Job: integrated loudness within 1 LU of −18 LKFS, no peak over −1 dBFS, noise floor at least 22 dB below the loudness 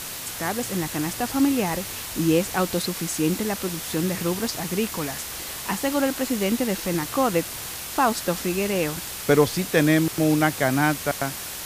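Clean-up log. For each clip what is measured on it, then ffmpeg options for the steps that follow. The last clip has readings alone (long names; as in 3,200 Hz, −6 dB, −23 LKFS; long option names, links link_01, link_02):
background noise floor −34 dBFS; target noise floor −46 dBFS; integrated loudness −24.0 LKFS; sample peak −4.5 dBFS; target loudness −18.0 LKFS
→ -af "afftdn=noise_reduction=12:noise_floor=-34"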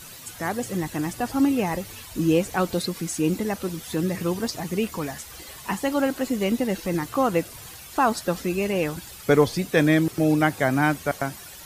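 background noise floor −42 dBFS; target noise floor −47 dBFS
→ -af "afftdn=noise_reduction=6:noise_floor=-42"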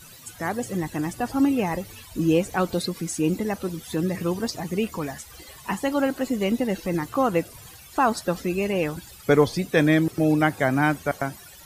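background noise floor −46 dBFS; target noise floor −47 dBFS
→ -af "afftdn=noise_reduction=6:noise_floor=-46"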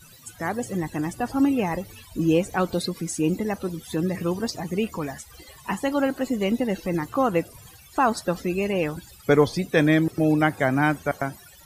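background noise floor −49 dBFS; integrated loudness −24.5 LKFS; sample peak −5.0 dBFS; target loudness −18.0 LKFS
→ -af "volume=6.5dB,alimiter=limit=-1dB:level=0:latency=1"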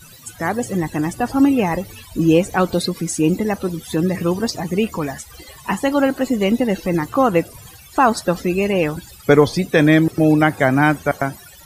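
integrated loudness −18.5 LKFS; sample peak −1.0 dBFS; background noise floor −43 dBFS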